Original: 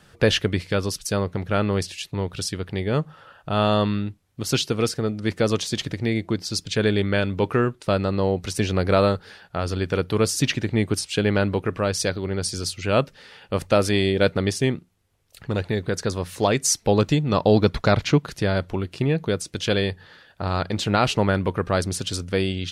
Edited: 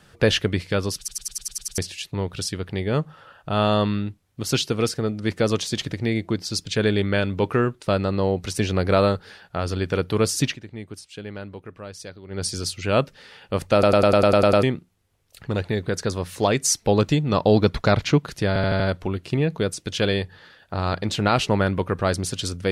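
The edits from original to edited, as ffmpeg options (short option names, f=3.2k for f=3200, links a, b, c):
-filter_complex "[0:a]asplit=24[a][b][c][d][e][f][g][h][i][j][k][l][m][n][o][p][q][r][s][t][u][v][w][x];[a]atrim=end=1.082[y];[b]atrim=start=0.978:end=1.082[z];[c]atrim=start=0.978:end=1.082[aa];[d]atrim=start=0.978:end=1.082[ab];[e]atrim=start=0.978:end=1.082[ac];[f]atrim=start=0.978:end=1.082[ad];[g]atrim=start=0.978:end=1.082[ae];[h]atrim=start=0.978:end=1.082[af];[i]atrim=start=1.778:end=10.58,asetpts=PTS-STARTPTS,afade=t=out:st=8.652:d=0.15:silence=0.188365[ag];[j]atrim=start=10.58:end=12.28,asetpts=PTS-STARTPTS,volume=-14.5dB[ah];[k]atrim=start=12.28:end=13.832,asetpts=PTS-STARTPTS,afade=t=in:d=0.15:silence=0.188365[ai];[l]atrim=start=13.728:end=13.832[aj];[m]atrim=start=13.728:end=13.832[ak];[n]atrim=start=13.728:end=13.832[al];[o]atrim=start=13.728:end=13.832[am];[p]atrim=start=13.728:end=13.832[an];[q]atrim=start=13.728:end=13.832[ao];[r]atrim=start=13.728:end=13.832[ap];[s]atrim=start=13.728:end=13.832[aq];[t]atrim=start=14.628:end=18.562[ar];[u]atrim=start=18.478:end=18.562[as];[v]atrim=start=18.478:end=18.562[at];[w]atrim=start=18.478:end=18.562[au];[x]atrim=start=18.478[av];[y][z]acrossfade=d=0.004:c1=hsin:c2=hsin[aw];[aw][aa]acrossfade=d=0.004:c1=hsin:c2=hsin[ax];[ax][ab]acrossfade=d=0.004:c1=hsin:c2=hsin[ay];[ay][ac]acrossfade=d=0.004:c1=hsin:c2=hsin[az];[az][ad]acrossfade=d=0.004:c1=hsin:c2=hsin[ba];[ba][ae]acrossfade=d=0.004:c1=hsin:c2=hsin[bb];[bb][af]acrossfade=d=0.004:c1=hsin:c2=hsin[bc];[ag][ah][ai]concat=n=3:v=0:a=1[bd];[bc][bd]acrossfade=d=0.004:c1=hsin:c2=hsin[be];[be][aj]acrossfade=d=0.004:c1=hsin:c2=hsin[bf];[bf][ak]acrossfade=d=0.004:c1=hsin:c2=hsin[bg];[bg][al]acrossfade=d=0.004:c1=hsin:c2=hsin[bh];[bh][am]acrossfade=d=0.004:c1=hsin:c2=hsin[bi];[bi][an]acrossfade=d=0.004:c1=hsin:c2=hsin[bj];[bj][ao]acrossfade=d=0.004:c1=hsin:c2=hsin[bk];[bk][ap]acrossfade=d=0.004:c1=hsin:c2=hsin[bl];[bl][aq]acrossfade=d=0.004:c1=hsin:c2=hsin[bm];[bm][ar]acrossfade=d=0.004:c1=hsin:c2=hsin[bn];[bn][as]acrossfade=d=0.004:c1=hsin:c2=hsin[bo];[bo][at]acrossfade=d=0.004:c1=hsin:c2=hsin[bp];[bp][au]acrossfade=d=0.004:c1=hsin:c2=hsin[bq];[bq][av]acrossfade=d=0.004:c1=hsin:c2=hsin"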